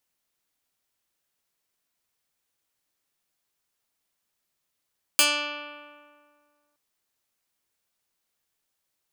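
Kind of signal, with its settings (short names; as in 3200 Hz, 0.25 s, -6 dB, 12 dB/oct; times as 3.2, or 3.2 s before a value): plucked string D4, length 1.57 s, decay 1.99 s, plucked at 0.15, medium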